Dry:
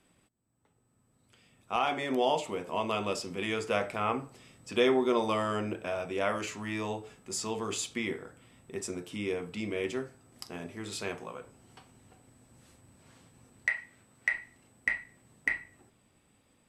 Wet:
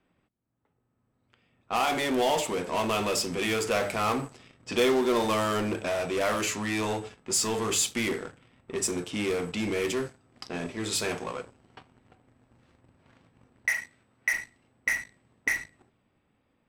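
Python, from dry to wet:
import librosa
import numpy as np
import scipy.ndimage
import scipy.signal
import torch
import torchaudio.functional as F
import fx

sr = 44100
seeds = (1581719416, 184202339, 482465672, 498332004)

p1 = fx.leveller(x, sr, passes=2)
p2 = fx.hum_notches(p1, sr, base_hz=50, count=4)
p3 = 10.0 ** (-29.0 / 20.0) * (np.abs((p2 / 10.0 ** (-29.0 / 20.0) + 3.0) % 4.0 - 2.0) - 1.0)
p4 = p2 + (p3 * librosa.db_to_amplitude(-4.5))
p5 = fx.high_shelf(p4, sr, hz=5700.0, db=7.5)
p6 = fx.env_lowpass(p5, sr, base_hz=2300.0, full_db=-22.0)
y = p6 * librosa.db_to_amplitude(-3.0)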